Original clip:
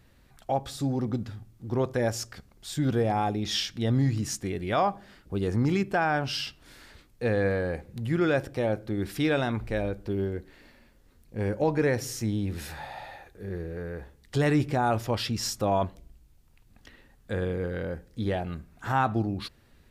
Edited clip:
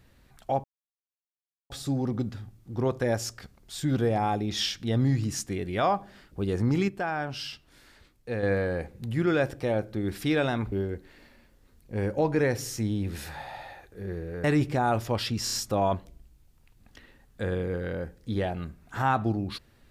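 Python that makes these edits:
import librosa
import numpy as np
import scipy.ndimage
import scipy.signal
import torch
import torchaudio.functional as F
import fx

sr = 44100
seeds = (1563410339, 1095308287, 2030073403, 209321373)

y = fx.edit(x, sr, fx.insert_silence(at_s=0.64, length_s=1.06),
    fx.clip_gain(start_s=5.82, length_s=1.55, db=-5.0),
    fx.cut(start_s=9.66, length_s=0.49),
    fx.cut(start_s=13.87, length_s=0.56),
    fx.stutter(start_s=15.43, slice_s=0.03, count=4), tone=tone)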